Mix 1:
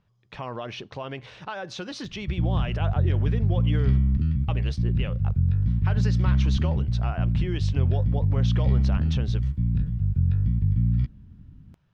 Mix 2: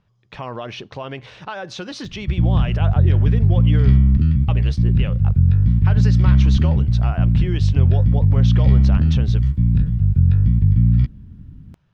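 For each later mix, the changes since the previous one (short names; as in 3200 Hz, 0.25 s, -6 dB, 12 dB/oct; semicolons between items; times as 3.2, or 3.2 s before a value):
speech +4.0 dB; background +8.0 dB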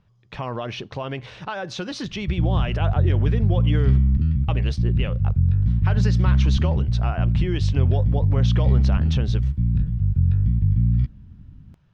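background -8.0 dB; master: add low shelf 180 Hz +4.5 dB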